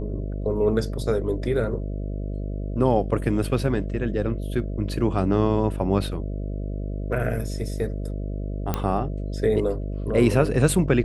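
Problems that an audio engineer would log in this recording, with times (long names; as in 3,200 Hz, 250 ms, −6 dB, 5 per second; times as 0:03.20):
mains buzz 50 Hz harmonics 13 −29 dBFS
0:08.74: click −10 dBFS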